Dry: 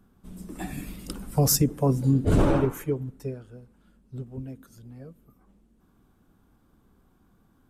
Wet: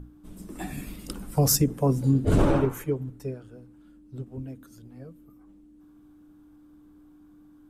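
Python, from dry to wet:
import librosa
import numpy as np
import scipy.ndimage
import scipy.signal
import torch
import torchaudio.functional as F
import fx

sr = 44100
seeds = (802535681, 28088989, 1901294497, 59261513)

y = fx.add_hum(x, sr, base_hz=60, snr_db=10)
y = fx.hum_notches(y, sr, base_hz=60, count=4)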